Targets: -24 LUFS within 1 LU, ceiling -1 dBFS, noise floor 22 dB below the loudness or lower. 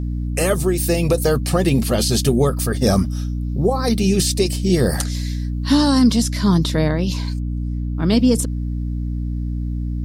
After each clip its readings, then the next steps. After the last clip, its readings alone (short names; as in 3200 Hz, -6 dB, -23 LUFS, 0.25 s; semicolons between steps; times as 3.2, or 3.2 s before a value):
hum 60 Hz; harmonics up to 300 Hz; hum level -20 dBFS; loudness -19.0 LUFS; peak -3.5 dBFS; loudness target -24.0 LUFS
-> notches 60/120/180/240/300 Hz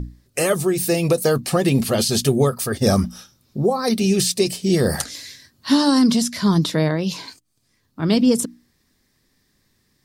hum none; loudness -19.5 LUFS; peak -4.0 dBFS; loudness target -24.0 LUFS
-> gain -4.5 dB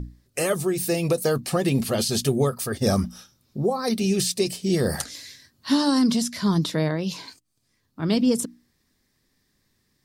loudness -24.0 LUFS; peak -8.5 dBFS; noise floor -71 dBFS